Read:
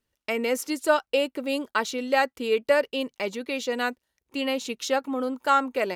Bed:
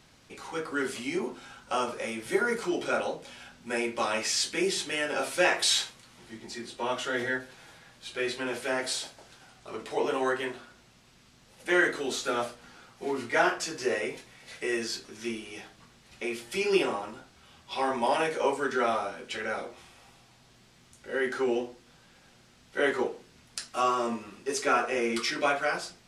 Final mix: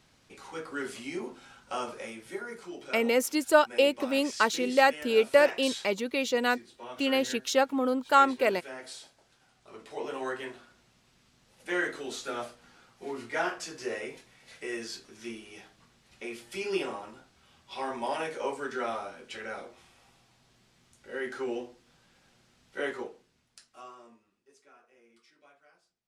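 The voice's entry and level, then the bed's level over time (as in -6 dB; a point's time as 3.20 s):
2.65 s, +0.5 dB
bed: 1.98 s -5 dB
2.44 s -12.5 dB
9.27 s -12.5 dB
10.35 s -6 dB
22.80 s -6 dB
24.71 s -34 dB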